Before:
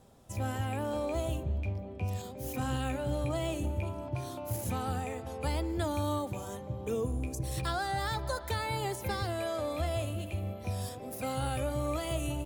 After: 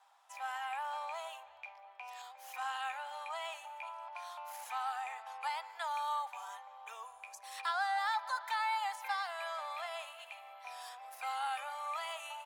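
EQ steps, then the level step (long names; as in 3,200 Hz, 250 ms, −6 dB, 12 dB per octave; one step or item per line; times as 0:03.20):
elliptic high-pass filter 830 Hz, stop band 60 dB
low-pass filter 1,800 Hz 6 dB per octave
+4.5 dB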